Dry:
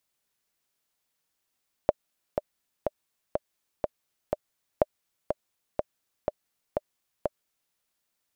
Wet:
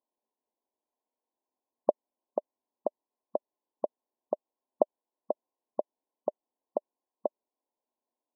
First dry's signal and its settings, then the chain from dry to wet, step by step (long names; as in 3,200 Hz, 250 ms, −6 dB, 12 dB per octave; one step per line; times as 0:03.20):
click track 123 BPM, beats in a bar 6, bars 2, 601 Hz, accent 6.5 dB −6 dBFS
linear-phase brick-wall band-pass 210–1,100 Hz